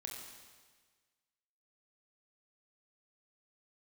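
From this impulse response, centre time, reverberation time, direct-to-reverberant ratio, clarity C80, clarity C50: 70 ms, 1.5 s, -1.0 dB, 3.5 dB, 2.0 dB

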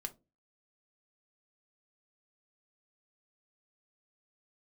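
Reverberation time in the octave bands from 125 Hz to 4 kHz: 0.40 s, 0.40 s, 0.30 s, 0.20 s, 0.15 s, 0.15 s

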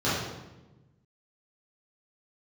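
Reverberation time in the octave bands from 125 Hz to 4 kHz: 1.8 s, 1.5 s, 1.2 s, 0.95 s, 0.85 s, 0.80 s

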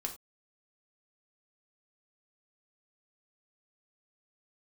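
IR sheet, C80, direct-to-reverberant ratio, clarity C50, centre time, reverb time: 17.0 dB, 2.5 dB, 11.0 dB, 12 ms, no single decay rate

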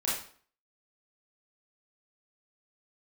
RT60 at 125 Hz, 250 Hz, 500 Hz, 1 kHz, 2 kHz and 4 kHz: 0.45 s, 0.50 s, 0.50 s, 0.50 s, 0.45 s, 0.45 s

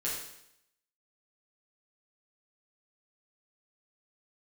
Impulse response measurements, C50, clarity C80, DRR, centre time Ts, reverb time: 2.5 dB, 5.5 dB, -7.5 dB, 51 ms, 0.75 s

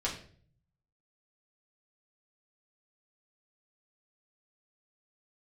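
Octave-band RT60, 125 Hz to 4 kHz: 1.1 s, 0.75 s, 0.55 s, 0.40 s, 0.45 s, 0.40 s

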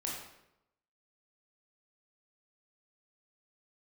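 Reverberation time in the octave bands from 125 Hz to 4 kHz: 0.90 s, 0.85 s, 0.90 s, 0.80 s, 0.75 s, 0.65 s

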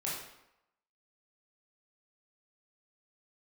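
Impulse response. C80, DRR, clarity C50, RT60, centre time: 5.0 dB, -6.5 dB, 1.5 dB, 0.85 s, 56 ms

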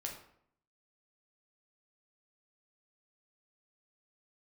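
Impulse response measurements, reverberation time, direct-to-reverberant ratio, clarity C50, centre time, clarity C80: 0.65 s, 0.0 dB, 6.5 dB, 26 ms, 9.5 dB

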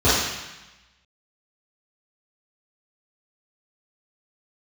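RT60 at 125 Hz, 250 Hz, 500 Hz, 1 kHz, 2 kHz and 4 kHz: 1.2 s, 1.1 s, 0.90 s, 1.1 s, 1.2 s, 1.1 s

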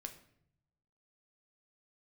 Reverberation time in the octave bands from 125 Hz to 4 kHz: 1.3 s, 1.0 s, 0.75 s, 0.65 s, 0.60 s, 0.50 s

